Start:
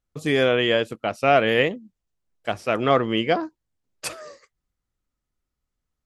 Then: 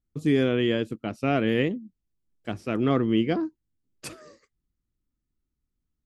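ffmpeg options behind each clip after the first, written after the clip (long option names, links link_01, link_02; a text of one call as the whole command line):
ffmpeg -i in.wav -af "lowshelf=frequency=430:width_type=q:width=1.5:gain=9.5,volume=-8.5dB" out.wav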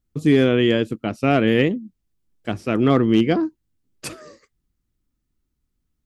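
ffmpeg -i in.wav -af "asoftclip=type=hard:threshold=-13.5dB,volume=6.5dB" out.wav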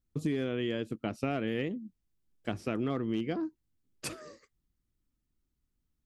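ffmpeg -i in.wav -af "acompressor=threshold=-23dB:ratio=6,volume=-6dB" out.wav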